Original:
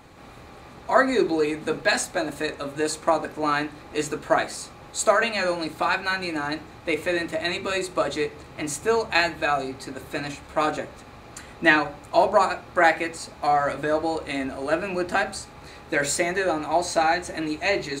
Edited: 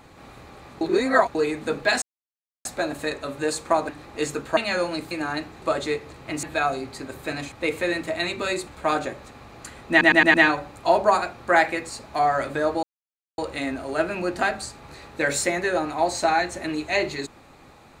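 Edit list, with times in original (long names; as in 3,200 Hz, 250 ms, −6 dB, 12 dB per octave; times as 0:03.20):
0:00.81–0:01.35: reverse
0:02.02: splice in silence 0.63 s
0:03.26–0:03.66: remove
0:04.34–0:05.25: remove
0:05.79–0:06.26: remove
0:06.77–0:07.92: move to 0:10.39
0:08.73–0:09.30: remove
0:11.62: stutter 0.11 s, 5 plays
0:14.11: splice in silence 0.55 s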